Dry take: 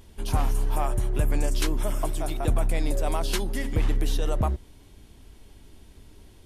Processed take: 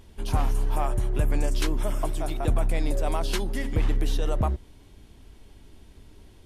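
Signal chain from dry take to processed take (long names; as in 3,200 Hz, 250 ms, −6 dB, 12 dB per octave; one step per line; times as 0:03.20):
high-shelf EQ 6,700 Hz −5.5 dB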